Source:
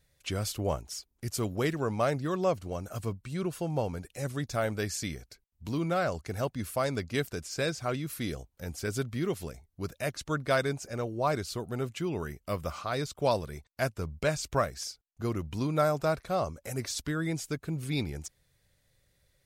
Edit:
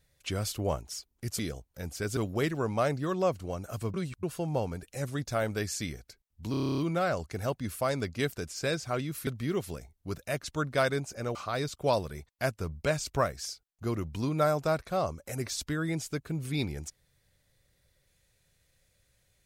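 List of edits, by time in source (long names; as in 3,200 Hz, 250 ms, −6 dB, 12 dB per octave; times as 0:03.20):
0:03.16–0:03.45: reverse
0:05.73: stutter 0.03 s, 10 plays
0:08.22–0:09.00: move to 0:01.39
0:11.08–0:12.73: remove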